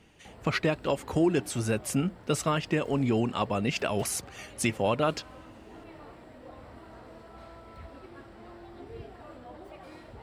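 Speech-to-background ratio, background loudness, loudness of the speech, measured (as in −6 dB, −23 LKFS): 19.5 dB, −48.5 LKFS, −29.0 LKFS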